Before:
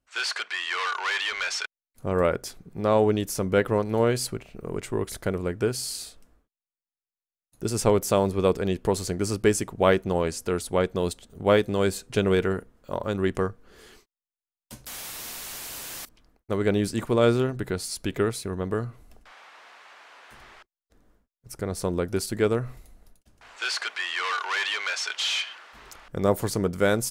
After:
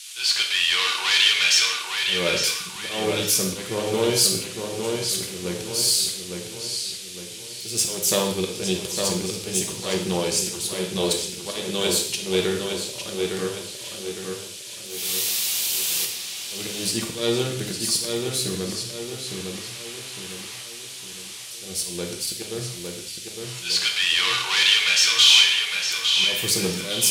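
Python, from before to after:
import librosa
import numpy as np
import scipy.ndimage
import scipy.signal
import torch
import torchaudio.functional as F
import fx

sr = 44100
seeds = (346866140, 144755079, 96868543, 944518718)

p1 = fx.diode_clip(x, sr, knee_db=-22.0)
p2 = scipy.signal.sosfilt(scipy.signal.butter(2, 110.0, 'highpass', fs=sr, output='sos'), p1)
p3 = fx.notch(p2, sr, hz=670.0, q=17.0)
p4 = fx.auto_swell(p3, sr, attack_ms=260.0)
p5 = fx.dmg_noise_band(p4, sr, seeds[0], low_hz=1400.0, high_hz=11000.0, level_db=-53.0)
p6 = fx.high_shelf_res(p5, sr, hz=2200.0, db=11.0, q=1.5)
p7 = p6 + fx.echo_filtered(p6, sr, ms=858, feedback_pct=45, hz=4900.0, wet_db=-4.5, dry=0)
y = fx.rev_gated(p7, sr, seeds[1], gate_ms=220, shape='falling', drr_db=1.0)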